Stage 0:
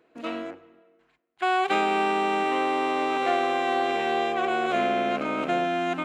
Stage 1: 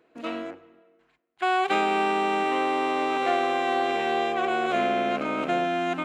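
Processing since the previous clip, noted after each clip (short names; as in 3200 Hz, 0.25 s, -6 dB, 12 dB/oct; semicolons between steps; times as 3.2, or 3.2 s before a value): nothing audible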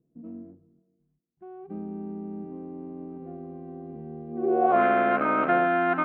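low-pass sweep 160 Hz -> 1500 Hz, 4.27–4.84; gain +1 dB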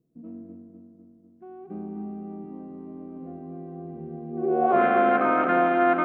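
darkening echo 0.249 s, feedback 64%, low-pass 2700 Hz, level -6 dB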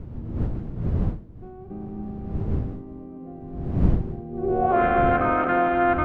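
wind noise 140 Hz -28 dBFS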